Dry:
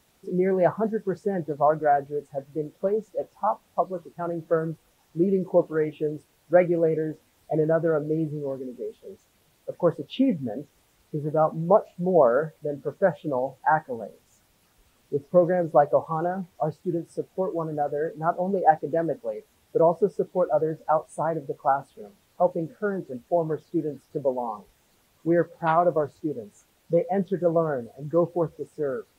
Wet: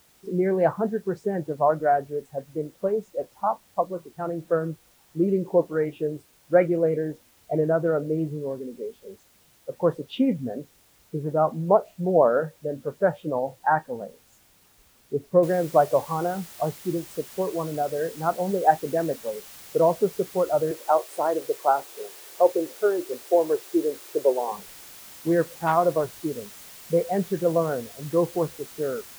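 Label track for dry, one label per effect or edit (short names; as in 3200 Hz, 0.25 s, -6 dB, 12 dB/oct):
15.430000	15.430000	noise floor step -61 dB -45 dB
20.710000	24.520000	resonant low shelf 270 Hz -11 dB, Q 3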